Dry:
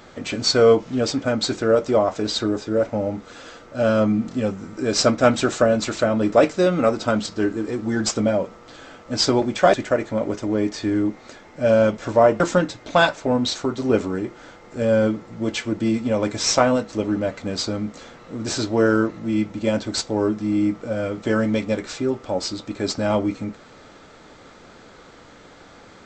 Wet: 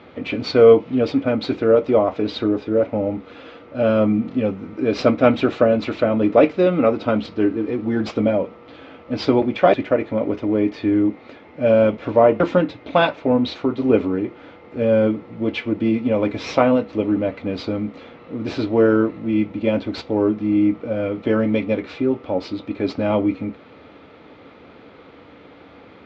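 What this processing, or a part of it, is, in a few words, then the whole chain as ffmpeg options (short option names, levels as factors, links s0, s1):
guitar cabinet: -af "highpass=77,equalizer=f=78:t=q:w=4:g=7,equalizer=f=280:t=q:w=4:g=6,equalizer=f=470:t=q:w=4:g=4,equalizer=f=1600:t=q:w=4:g=-5,equalizer=f=2400:t=q:w=4:g=4,lowpass=f=3500:w=0.5412,lowpass=f=3500:w=1.3066"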